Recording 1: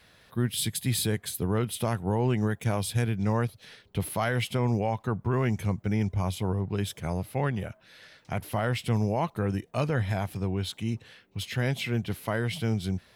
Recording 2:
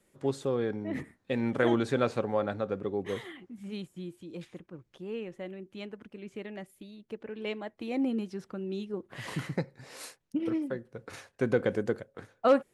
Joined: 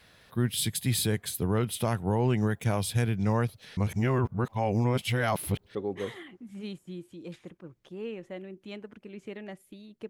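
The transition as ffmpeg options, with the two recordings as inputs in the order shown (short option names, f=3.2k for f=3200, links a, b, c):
-filter_complex "[0:a]apad=whole_dur=10.09,atrim=end=10.09,asplit=2[a][b];[a]atrim=end=3.772[c];[b]atrim=start=3.768:end=5.752,asetpts=PTS-STARTPTS,areverse[d];[1:a]atrim=start=2.838:end=7.18[e];[c][d]acrossfade=d=0.004:c1=hsin:c2=hsin[f];[f][e]acrossfade=d=0.004:c1=hsin:c2=hsin"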